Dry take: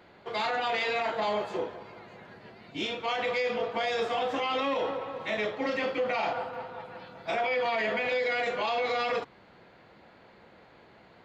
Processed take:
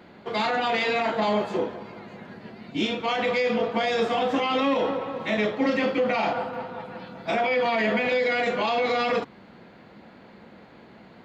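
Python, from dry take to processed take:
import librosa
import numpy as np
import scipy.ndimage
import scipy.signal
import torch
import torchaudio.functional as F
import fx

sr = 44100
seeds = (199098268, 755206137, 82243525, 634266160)

y = fx.peak_eq(x, sr, hz=220.0, db=9.5, octaves=0.96)
y = y * 10.0 ** (4.0 / 20.0)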